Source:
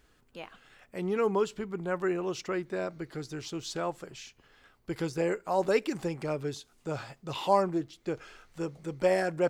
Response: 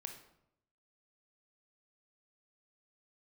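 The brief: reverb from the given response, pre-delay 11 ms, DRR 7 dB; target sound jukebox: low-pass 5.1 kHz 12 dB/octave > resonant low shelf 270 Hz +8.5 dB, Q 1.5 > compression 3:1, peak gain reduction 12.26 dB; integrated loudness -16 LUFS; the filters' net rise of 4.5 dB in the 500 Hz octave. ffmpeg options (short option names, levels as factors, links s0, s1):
-filter_complex "[0:a]equalizer=f=500:t=o:g=7.5,asplit=2[s0][s1];[1:a]atrim=start_sample=2205,adelay=11[s2];[s1][s2]afir=irnorm=-1:irlink=0,volume=0.668[s3];[s0][s3]amix=inputs=2:normalize=0,lowpass=5100,lowshelf=f=270:t=q:w=1.5:g=8.5,acompressor=threshold=0.0355:ratio=3,volume=7.08"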